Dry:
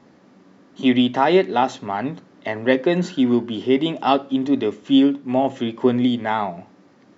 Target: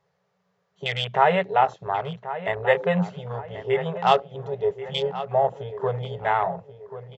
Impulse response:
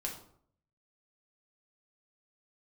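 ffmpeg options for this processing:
-filter_complex "[0:a]afftfilt=real='re*(1-between(b*sr/4096,190,390))':imag='im*(1-between(b*sr/4096,190,390))':win_size=4096:overlap=0.75,afwtdn=0.0316,asplit=2[link_01][link_02];[link_02]adelay=1085,lowpass=frequency=2500:poles=1,volume=-12.5dB,asplit=2[link_03][link_04];[link_04]adelay=1085,lowpass=frequency=2500:poles=1,volume=0.43,asplit=2[link_05][link_06];[link_06]adelay=1085,lowpass=frequency=2500:poles=1,volume=0.43,asplit=2[link_07][link_08];[link_08]adelay=1085,lowpass=frequency=2500:poles=1,volume=0.43[link_09];[link_01][link_03][link_05][link_07][link_09]amix=inputs=5:normalize=0"

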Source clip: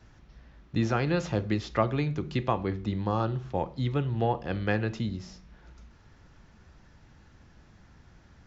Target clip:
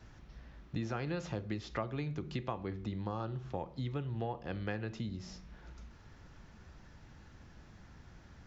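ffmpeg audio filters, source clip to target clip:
ffmpeg -i in.wav -af "acompressor=threshold=-39dB:ratio=2.5" out.wav

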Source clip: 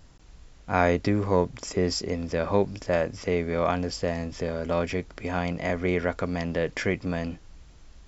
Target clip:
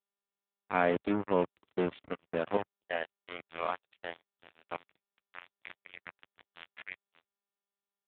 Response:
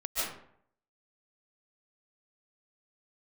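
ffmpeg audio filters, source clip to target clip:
-af "asetnsamples=nb_out_samples=441:pad=0,asendcmd='2.57 highpass f 680;4.76 highpass f 1500',highpass=200,acrusher=bits=3:mix=0:aa=0.5,volume=-4.5dB" -ar 8000 -c:a libopencore_amrnb -b:a 7400

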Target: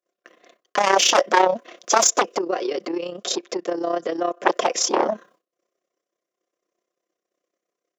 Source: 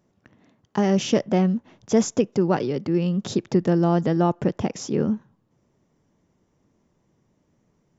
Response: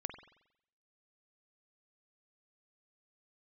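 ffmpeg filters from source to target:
-filter_complex "[0:a]asuperstop=centerf=880:order=20:qfactor=4.4,equalizer=frequency=1400:width=1:gain=-2.5,aecho=1:1:5.7:0.47,asettb=1/sr,asplit=3[link_01][link_02][link_03];[link_01]atrim=end=2.384[link_04];[link_02]atrim=start=2.38:end=4.45,asetpts=PTS-STARTPTS,afade=type=in:duration=0.004:curve=qsin,afade=type=out:start_time=2.066:duration=0.004:curve=qsin,acompressor=threshold=-28dB:ratio=6[link_05];[link_03]atrim=start=4.446[link_06];[link_04][link_05]acrossfade=duration=0.004:curve1=hsin:curve2=qsin[link_07];[link_07][link_06]acrossfade=duration=0.004:curve1=qsin:curve2=hsin,aeval=exprs='0.841*sin(PI/2*7.08*val(0)/0.841)':channel_layout=same,highpass=frequency=420:width=0.5412,highpass=frequency=420:width=1.3066,tremolo=f=32:d=0.667,agate=range=-33dB:threshold=-42dB:ratio=3:detection=peak,volume=-4.5dB"

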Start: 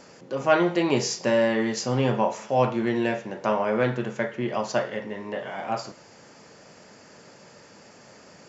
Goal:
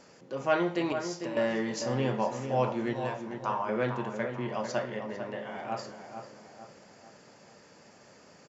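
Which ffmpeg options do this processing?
ffmpeg -i in.wav -filter_complex "[0:a]asettb=1/sr,asplit=3[link_01][link_02][link_03];[link_01]atrim=end=0.924[link_04];[link_02]atrim=start=0.92:end=1.37,asetpts=PTS-STARTPTS,afade=type=in:duration=0.004:curve=qsin,afade=type=out:start_time=0.446:duration=0.004:curve=qsin,acompressor=threshold=-31dB:ratio=6[link_05];[link_03]atrim=start=1.366[link_06];[link_04][link_05]acrossfade=duration=0.004:curve1=hsin:curve2=qsin[link_07];[link_07][link_06]acrossfade=duration=0.004:curve1=qsin:curve2=hsin,asettb=1/sr,asplit=3[link_08][link_09][link_10];[link_08]atrim=end=2.934[link_11];[link_09]atrim=start=2.93:end=3.69,asetpts=PTS-STARTPTS,afade=type=in:duration=0.004:curve=qsin,afade=type=out:start_time=0.756:duration=0.004:curve=qsin,equalizer=frequency=250:width_type=o:width=1:gain=-9,equalizer=frequency=500:width_type=o:width=1:gain=-11,equalizer=frequency=1000:width_type=o:width=1:gain=9,equalizer=frequency=2000:width_type=o:width=1:gain=-8[link_12];[link_10]atrim=start=3.686[link_13];[link_11][link_12]acrossfade=duration=0.004:curve1=hsin:curve2=qsin[link_14];[link_14][link_13]acrossfade=duration=0.004:curve1=qsin:curve2=hsin,asplit=2[link_15][link_16];[link_16]adelay=448,lowpass=frequency=2100:poles=1,volume=-7.5dB,asplit=2[link_17][link_18];[link_18]adelay=448,lowpass=frequency=2100:poles=1,volume=0.48,asplit=2[link_19][link_20];[link_20]adelay=448,lowpass=frequency=2100:poles=1,volume=0.48,asplit=2[link_21][link_22];[link_22]adelay=448,lowpass=frequency=2100:poles=1,volume=0.48,asplit=2[link_23][link_24];[link_24]adelay=448,lowpass=frequency=2100:poles=1,volume=0.48,asplit=2[link_25][link_26];[link_26]adelay=448,lowpass=frequency=2100:poles=1,volume=0.48[link_27];[link_17][link_19][link_21][link_23][link_25][link_27]amix=inputs=6:normalize=0[link_28];[link_15][link_28]amix=inputs=2:normalize=0,volume=-6.5dB" out.wav

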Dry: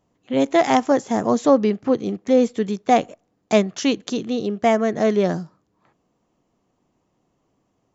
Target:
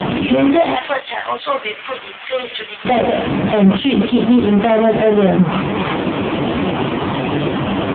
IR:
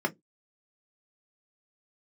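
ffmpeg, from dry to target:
-filter_complex "[0:a]aeval=exprs='val(0)+0.5*0.0891*sgn(val(0))':channel_layout=same,asettb=1/sr,asplit=3[link_01][link_02][link_03];[link_01]atrim=end=0.734[link_04];[link_02]atrim=start=0.73:end=2.85,asetpts=PTS-STARTPTS,afade=type=in:duration=0.004:curve=qsin,afade=type=out:start_time=2.116:duration=0.004:curve=qsin,highpass=1400[link_05];[link_03]atrim=start=2.846[link_06];[link_04][link_05]acrossfade=duration=0.004:curve1=hsin:curve2=qsin[link_07];[link_07][link_06]acrossfade=duration=0.004:curve1=qsin:curve2=hsin,afftdn=noise_reduction=13:noise_floor=-36,asoftclip=type=tanh:threshold=-14.5dB,aexciter=amount=1.5:drive=5.8:freq=2500,asplit=2[link_08][link_09];[link_09]adelay=21,volume=-3dB[link_10];[link_08][link_10]amix=inputs=2:normalize=0,aecho=1:1:61|122|183|244|305|366:0.141|0.0833|0.0492|0.029|0.0171|0.0101,alimiter=level_in=14.5dB:limit=-1dB:release=50:level=0:latency=1,volume=-3dB" -ar 8000 -c:a libopencore_amrnb -b:a 5150

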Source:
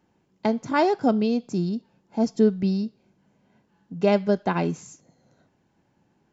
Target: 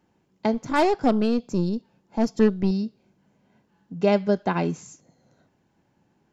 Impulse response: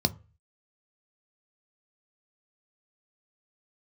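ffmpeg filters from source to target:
-filter_complex "[0:a]asettb=1/sr,asplit=3[link_01][link_02][link_03];[link_01]atrim=end=0.544[link_04];[link_02]atrim=start=0.54:end=2.71,asetpts=PTS-STARTPTS,afade=type=in:duration=0.004:curve=qsin,afade=type=out:start_time=2.166:duration=0.004:curve=qsin,aeval=exprs='0.376*(cos(1*acos(clip(val(0)/0.376,-1,1)))-cos(1*PI/2))+0.0266*(cos(8*acos(clip(val(0)/0.376,-1,1)))-cos(8*PI/2))':channel_layout=same[link_05];[link_03]atrim=start=2.706[link_06];[link_04][link_05]acrossfade=duration=0.004:curve1=hsin:curve2=qsin[link_07];[link_07][link_06]acrossfade=duration=0.004:curve1=qsin:curve2=hsin"

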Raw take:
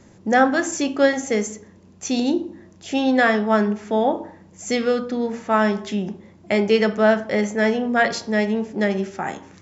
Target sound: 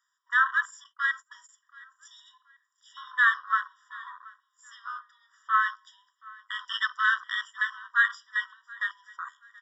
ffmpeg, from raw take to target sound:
ffmpeg -i in.wav -filter_complex "[0:a]aresample=16000,aresample=44100,afwtdn=0.0501,asettb=1/sr,asplit=3[link_01][link_02][link_03];[link_01]atrim=end=6.594[link_04];[link_02]atrim=start=6.59:end=7.48,asetpts=PTS-STARTPTS,afade=type=in:duration=0.004:curve=qsin,afade=type=out:start_time=0.886:duration=0.004:curve=qsin,equalizer=frequency=4600:width_type=o:width=1.7:gain=11[link_05];[link_03]atrim=start=7.476[link_06];[link_04][link_05]acrossfade=duration=0.004:curve1=hsin:curve2=qsin[link_07];[link_07][link_06]acrossfade=duration=0.004:curve1=qsin:curve2=hsin,aecho=1:1:727|1454:0.0708|0.0205,asettb=1/sr,asplit=3[link_08][link_09][link_10];[link_08]atrim=end=0.844[link_11];[link_09]atrim=start=0.84:end=1.49,asetpts=PTS-STARTPTS,afade=type=in:duration=0.004:curve=qsin,afade=type=out:start_time=0.646:duration=0.004:curve=qsin,agate=range=-25dB:threshold=-24dB:ratio=16:detection=peak[link_12];[link_10]atrim=start=1.486[link_13];[link_11][link_12]acrossfade=duration=0.004:curve1=hsin:curve2=qsin[link_14];[link_14][link_13]acrossfade=duration=0.004:curve1=qsin:curve2=hsin,asettb=1/sr,asplit=3[link_15][link_16][link_17];[link_15]atrim=end=4.674[link_18];[link_16]atrim=start=4.67:end=5.13,asetpts=PTS-STARTPTS,afade=type=in:duration=0.004:curve=qsin,afade=type=out:start_time=0.456:duration=0.004:curve=qsin,tiltshelf=frequency=1300:gain=3[link_19];[link_17]atrim=start=5.126[link_20];[link_18][link_19]acrossfade=duration=0.004:curve1=hsin:curve2=qsin[link_21];[link_21][link_20]acrossfade=duration=0.004:curve1=qsin:curve2=hsin,afftfilt=real='re*eq(mod(floor(b*sr/1024/970),2),1)':imag='im*eq(mod(floor(b*sr/1024/970),2),1)':win_size=1024:overlap=0.75" out.wav

